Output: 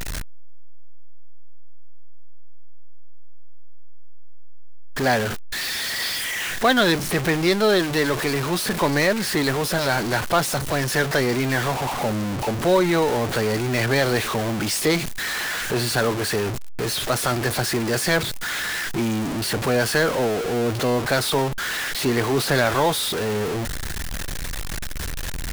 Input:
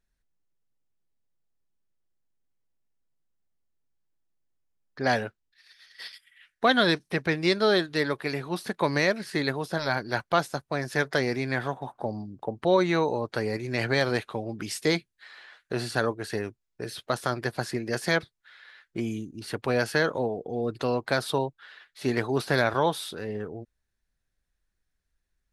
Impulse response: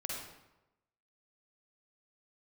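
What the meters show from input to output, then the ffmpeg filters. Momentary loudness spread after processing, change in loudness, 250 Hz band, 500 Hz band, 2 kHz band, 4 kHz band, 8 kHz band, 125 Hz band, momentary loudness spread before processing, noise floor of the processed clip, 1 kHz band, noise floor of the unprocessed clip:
9 LU, +5.5 dB, +6.0 dB, +5.5 dB, +6.0 dB, +8.5 dB, +15.5 dB, +7.5 dB, 12 LU, -27 dBFS, +5.5 dB, -80 dBFS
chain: -af "aeval=exprs='val(0)+0.5*0.075*sgn(val(0))':c=same,volume=1.5dB"

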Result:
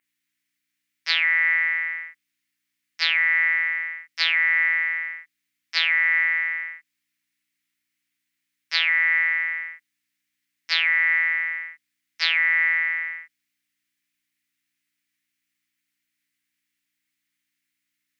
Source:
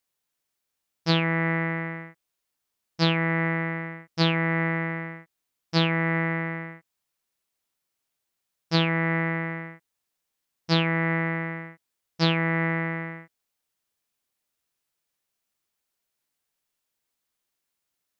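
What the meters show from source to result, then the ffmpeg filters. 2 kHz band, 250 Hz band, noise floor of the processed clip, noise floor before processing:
+9.5 dB, under -35 dB, -80 dBFS, -82 dBFS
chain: -af "adynamicequalizer=threshold=0.00708:dfrequency=5100:dqfactor=2.1:tfrequency=5100:tqfactor=2.1:attack=5:release=100:ratio=0.375:range=3:mode=boostabove:tftype=bell,aeval=exprs='val(0)+0.00355*(sin(2*PI*60*n/s)+sin(2*PI*2*60*n/s)/2+sin(2*PI*3*60*n/s)/3+sin(2*PI*4*60*n/s)/4+sin(2*PI*5*60*n/s)/5)':c=same,highpass=f=2k:t=q:w=3.5"

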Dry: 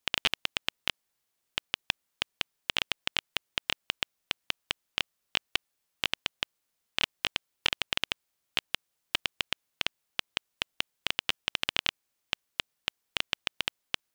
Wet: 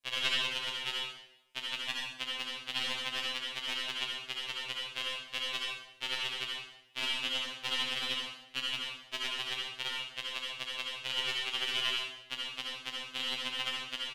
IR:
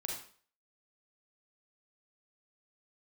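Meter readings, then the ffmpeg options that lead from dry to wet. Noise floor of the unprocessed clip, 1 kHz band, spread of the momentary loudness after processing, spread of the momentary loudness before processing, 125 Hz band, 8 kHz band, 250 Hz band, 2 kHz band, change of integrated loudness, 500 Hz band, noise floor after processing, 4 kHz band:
-81 dBFS, -1.0 dB, 7 LU, 8 LU, -5.0 dB, -1.5 dB, -2.5 dB, -2.0 dB, -1.5 dB, -1.5 dB, -56 dBFS, -0.5 dB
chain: -filter_complex "[0:a]asplit=2[a][b];[b]adelay=32,volume=-11dB[c];[a][c]amix=inputs=2:normalize=0,flanger=delay=1.8:depth=2.2:regen=48:speed=0.19:shape=sinusoidal[d];[1:a]atrim=start_sample=2205,asetrate=25137,aresample=44100[e];[d][e]afir=irnorm=-1:irlink=0,afftfilt=real='re*2.45*eq(mod(b,6),0)':imag='im*2.45*eq(mod(b,6),0)':win_size=2048:overlap=0.75"

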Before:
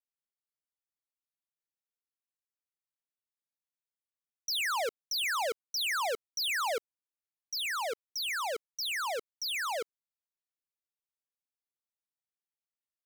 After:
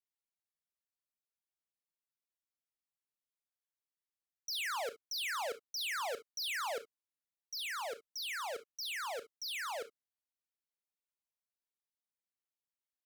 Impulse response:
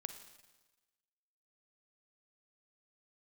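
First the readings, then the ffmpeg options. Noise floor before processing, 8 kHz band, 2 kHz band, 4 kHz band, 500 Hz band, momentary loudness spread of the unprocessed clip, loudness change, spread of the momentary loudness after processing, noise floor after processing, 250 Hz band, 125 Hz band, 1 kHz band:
under -85 dBFS, -6.0 dB, -6.0 dB, -6.0 dB, -6.0 dB, 7 LU, -6.0 dB, 7 LU, under -85 dBFS, -6.0 dB, n/a, -6.0 dB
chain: -filter_complex "[1:a]atrim=start_sample=2205,afade=t=out:st=0.15:d=0.01,atrim=end_sample=7056,asetrate=61740,aresample=44100[a];[0:a][a]afir=irnorm=-1:irlink=0"

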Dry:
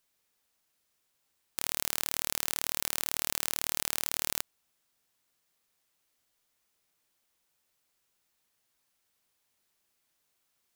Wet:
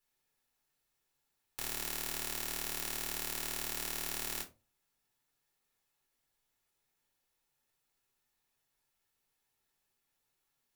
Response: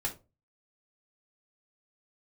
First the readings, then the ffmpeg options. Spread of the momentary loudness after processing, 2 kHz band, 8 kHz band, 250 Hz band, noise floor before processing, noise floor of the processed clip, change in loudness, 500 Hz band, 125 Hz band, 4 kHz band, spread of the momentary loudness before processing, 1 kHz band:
5 LU, -3.5 dB, -6.0 dB, -1.0 dB, -77 dBFS, -82 dBFS, -5.5 dB, -2.5 dB, -2.0 dB, -5.5 dB, 5 LU, -4.0 dB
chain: -filter_complex "[1:a]atrim=start_sample=2205[a];[0:a][a]afir=irnorm=-1:irlink=0,volume=-7dB"

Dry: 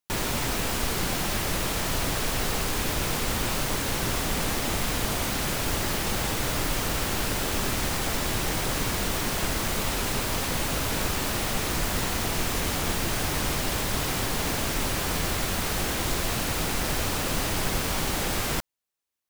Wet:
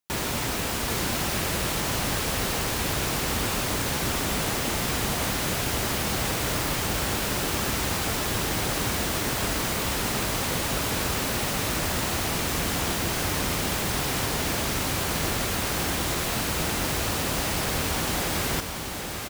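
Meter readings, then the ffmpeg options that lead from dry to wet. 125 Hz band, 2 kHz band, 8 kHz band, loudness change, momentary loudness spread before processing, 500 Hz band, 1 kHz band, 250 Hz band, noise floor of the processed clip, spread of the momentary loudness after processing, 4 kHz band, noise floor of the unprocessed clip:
+1.0 dB, +1.0 dB, +1.0 dB, +1.0 dB, 0 LU, +1.0 dB, +1.0 dB, +1.0 dB, -29 dBFS, 0 LU, +1.0 dB, -29 dBFS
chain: -filter_complex "[0:a]highpass=47,asplit=2[a][b];[b]aecho=0:1:780:0.562[c];[a][c]amix=inputs=2:normalize=0"

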